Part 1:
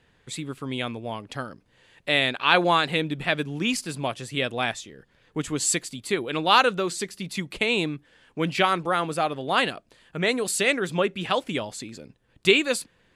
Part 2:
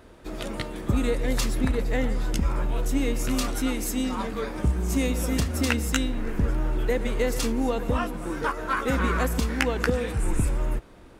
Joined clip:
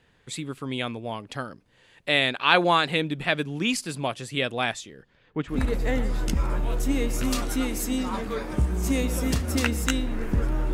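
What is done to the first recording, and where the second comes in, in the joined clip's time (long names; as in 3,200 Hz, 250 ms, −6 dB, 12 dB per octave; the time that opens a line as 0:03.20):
part 1
0:05.01–0:05.62: low-pass filter 7,900 Hz → 1,400 Hz
0:05.55: continue with part 2 from 0:01.61, crossfade 0.14 s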